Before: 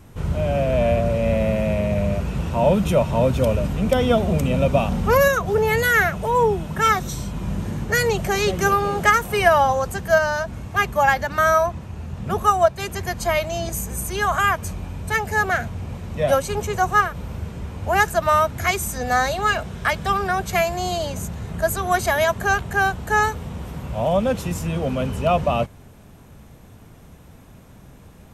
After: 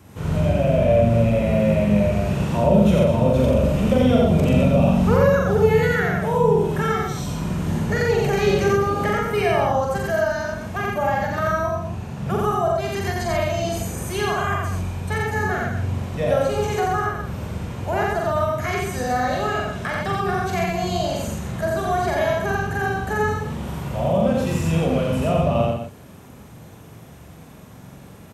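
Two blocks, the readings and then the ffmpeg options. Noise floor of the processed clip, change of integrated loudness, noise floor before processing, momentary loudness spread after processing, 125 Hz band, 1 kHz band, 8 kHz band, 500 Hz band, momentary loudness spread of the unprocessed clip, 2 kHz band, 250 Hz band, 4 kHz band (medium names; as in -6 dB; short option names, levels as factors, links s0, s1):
-43 dBFS, -0.5 dB, -45 dBFS, 10 LU, +3.5 dB, -3.5 dB, -5.5 dB, +1.0 dB, 10 LU, -5.0 dB, +4.5 dB, -2.5 dB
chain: -filter_complex "[0:a]acrossover=split=5100[s0][s1];[s1]acompressor=threshold=0.00891:ratio=4:attack=1:release=60[s2];[s0][s2]amix=inputs=2:normalize=0,highpass=87,acrossover=split=490[s3][s4];[s4]acompressor=threshold=0.0355:ratio=4[s5];[s3][s5]amix=inputs=2:normalize=0,asplit=2[s6][s7];[s7]adelay=43,volume=0.708[s8];[s6][s8]amix=inputs=2:normalize=0,aecho=1:1:87.46|207:0.891|0.355"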